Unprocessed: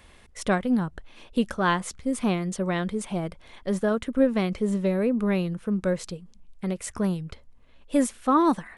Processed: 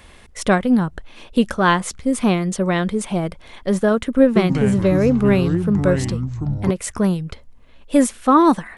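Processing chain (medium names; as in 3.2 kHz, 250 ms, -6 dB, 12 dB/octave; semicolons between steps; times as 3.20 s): 4.22–6.71 s: ever faster or slower copies 137 ms, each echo -6 st, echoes 3, each echo -6 dB; trim +7.5 dB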